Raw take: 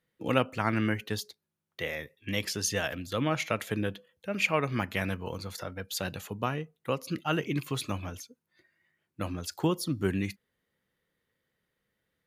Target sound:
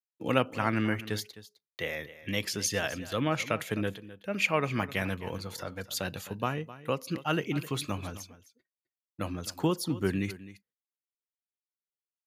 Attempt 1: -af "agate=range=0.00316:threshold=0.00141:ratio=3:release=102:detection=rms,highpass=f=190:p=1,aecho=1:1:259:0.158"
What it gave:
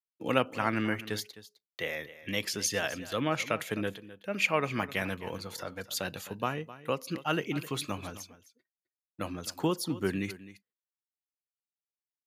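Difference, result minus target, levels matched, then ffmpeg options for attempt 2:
125 Hz band -3.5 dB
-af "agate=range=0.00316:threshold=0.00141:ratio=3:release=102:detection=rms,highpass=f=55:p=1,aecho=1:1:259:0.158"

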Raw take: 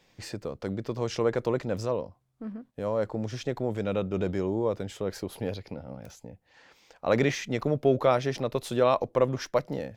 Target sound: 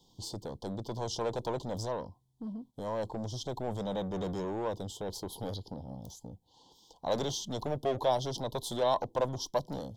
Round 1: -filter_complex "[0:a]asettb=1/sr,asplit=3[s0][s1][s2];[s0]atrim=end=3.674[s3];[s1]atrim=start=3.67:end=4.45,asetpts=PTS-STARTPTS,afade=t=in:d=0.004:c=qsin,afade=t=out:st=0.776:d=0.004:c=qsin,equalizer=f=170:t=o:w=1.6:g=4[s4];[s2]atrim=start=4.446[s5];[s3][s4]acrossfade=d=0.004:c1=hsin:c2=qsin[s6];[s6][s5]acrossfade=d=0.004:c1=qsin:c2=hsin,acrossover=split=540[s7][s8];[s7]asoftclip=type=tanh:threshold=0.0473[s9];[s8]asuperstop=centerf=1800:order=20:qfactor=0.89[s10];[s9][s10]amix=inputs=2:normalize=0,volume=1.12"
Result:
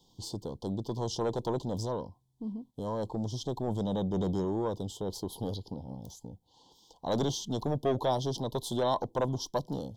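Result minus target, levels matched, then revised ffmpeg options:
saturation: distortion -6 dB
-filter_complex "[0:a]asettb=1/sr,asplit=3[s0][s1][s2];[s0]atrim=end=3.674[s3];[s1]atrim=start=3.67:end=4.45,asetpts=PTS-STARTPTS,afade=t=in:d=0.004:c=qsin,afade=t=out:st=0.776:d=0.004:c=qsin,equalizer=f=170:t=o:w=1.6:g=4[s4];[s2]atrim=start=4.446[s5];[s3][s4]acrossfade=d=0.004:c1=hsin:c2=qsin[s6];[s6][s5]acrossfade=d=0.004:c1=qsin:c2=hsin,acrossover=split=540[s7][s8];[s7]asoftclip=type=tanh:threshold=0.0168[s9];[s8]asuperstop=centerf=1800:order=20:qfactor=0.89[s10];[s9][s10]amix=inputs=2:normalize=0,volume=1.12"

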